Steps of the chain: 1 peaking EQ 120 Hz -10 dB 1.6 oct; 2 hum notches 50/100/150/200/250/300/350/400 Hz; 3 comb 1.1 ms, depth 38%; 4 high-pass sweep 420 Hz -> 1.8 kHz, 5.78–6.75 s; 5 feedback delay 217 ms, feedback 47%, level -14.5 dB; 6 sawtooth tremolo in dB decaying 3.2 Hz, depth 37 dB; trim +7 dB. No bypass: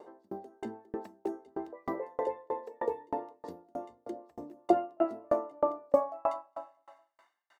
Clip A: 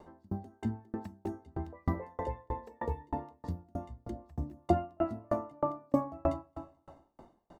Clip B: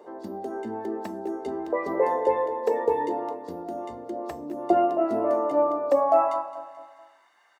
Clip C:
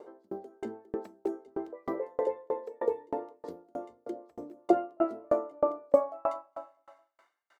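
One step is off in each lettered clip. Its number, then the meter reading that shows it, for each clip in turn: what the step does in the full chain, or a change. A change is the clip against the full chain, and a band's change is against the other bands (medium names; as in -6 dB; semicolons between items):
4, 125 Hz band +20.5 dB; 6, crest factor change -5.5 dB; 3, 1 kHz band -3.0 dB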